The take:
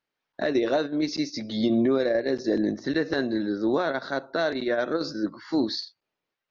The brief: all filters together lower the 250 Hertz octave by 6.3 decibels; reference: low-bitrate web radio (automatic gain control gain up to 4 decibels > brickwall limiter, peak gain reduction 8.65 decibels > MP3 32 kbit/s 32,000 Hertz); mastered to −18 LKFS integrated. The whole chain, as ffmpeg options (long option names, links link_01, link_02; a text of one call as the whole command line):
ffmpeg -i in.wav -af "equalizer=frequency=250:width_type=o:gain=-8.5,dynaudnorm=maxgain=4dB,alimiter=limit=-23.5dB:level=0:latency=1,volume=16dB" -ar 32000 -c:a libmp3lame -b:a 32k out.mp3